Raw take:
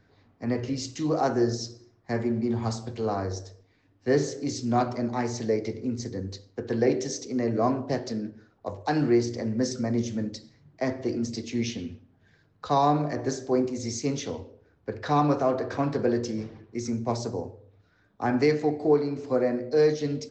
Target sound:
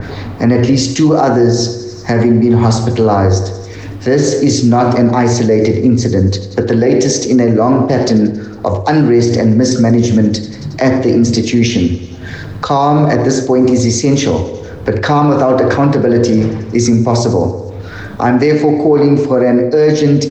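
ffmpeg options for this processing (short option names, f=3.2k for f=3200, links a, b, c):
-af "aecho=1:1:91|182|273|364|455:0.158|0.0808|0.0412|0.021|0.0107,acompressor=mode=upward:threshold=-35dB:ratio=2.5,lowshelf=f=170:g=3,areverse,acompressor=threshold=-24dB:ratio=6,areverse,alimiter=level_in=24dB:limit=-1dB:release=50:level=0:latency=1,adynamicequalizer=threshold=0.0316:dfrequency=2600:dqfactor=0.7:tfrequency=2600:tqfactor=0.7:attack=5:release=100:ratio=0.375:range=2:mode=cutabove:tftype=highshelf,volume=-1dB"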